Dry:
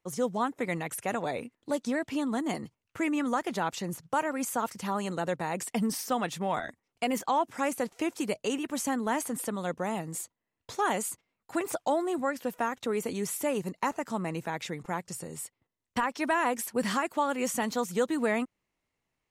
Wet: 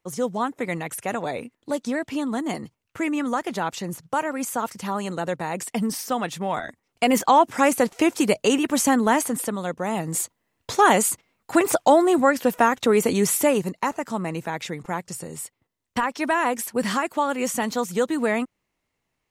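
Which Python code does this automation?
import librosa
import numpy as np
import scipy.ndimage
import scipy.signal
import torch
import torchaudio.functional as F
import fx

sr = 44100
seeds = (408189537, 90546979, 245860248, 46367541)

y = fx.gain(x, sr, db=fx.line((6.67, 4.0), (7.16, 11.0), (9.01, 11.0), (9.76, 3.5), (10.23, 12.0), (13.38, 12.0), (13.8, 5.0)))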